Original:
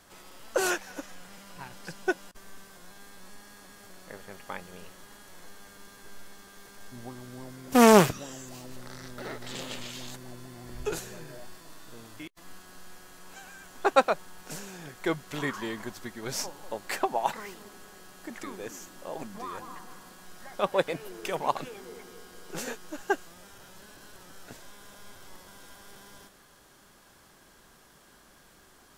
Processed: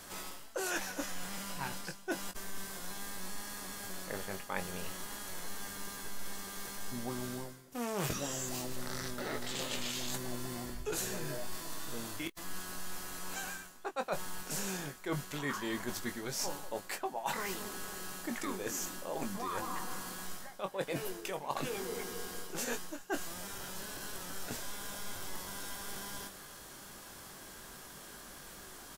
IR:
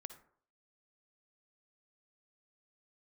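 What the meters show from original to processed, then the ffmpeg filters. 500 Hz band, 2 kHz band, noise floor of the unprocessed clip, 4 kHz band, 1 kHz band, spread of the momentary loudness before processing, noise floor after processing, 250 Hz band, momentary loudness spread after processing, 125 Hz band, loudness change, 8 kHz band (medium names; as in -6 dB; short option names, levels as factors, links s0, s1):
-10.5 dB, -5.0 dB, -58 dBFS, -1.5 dB, -9.0 dB, 21 LU, -51 dBFS, -9.0 dB, 8 LU, -4.5 dB, -10.0 dB, +0.5 dB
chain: -filter_complex "[0:a]highshelf=f=6000:g=6,areverse,acompressor=threshold=0.0112:ratio=12,areverse,asplit=2[s0][s1];[s1]adelay=21,volume=0.398[s2];[s0][s2]amix=inputs=2:normalize=0,volume=1.78"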